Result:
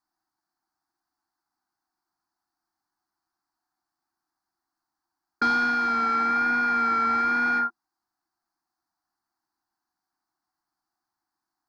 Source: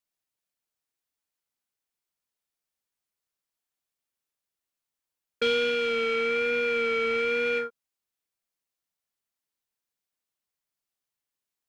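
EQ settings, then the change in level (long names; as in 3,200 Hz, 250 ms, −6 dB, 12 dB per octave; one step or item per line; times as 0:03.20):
drawn EQ curve 140 Hz 0 dB, 230 Hz +3 dB, 340 Hz +13 dB, 500 Hz −26 dB, 740 Hz +14 dB, 1,600 Hz +7 dB, 3,000 Hz −23 dB, 4,500 Hz +3 dB, 7,500 Hz −8 dB
+3.0 dB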